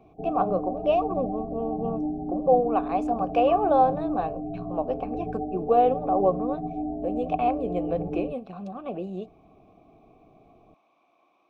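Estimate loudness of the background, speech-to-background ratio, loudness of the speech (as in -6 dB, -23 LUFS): -32.0 LUFS, 5.5 dB, -26.5 LUFS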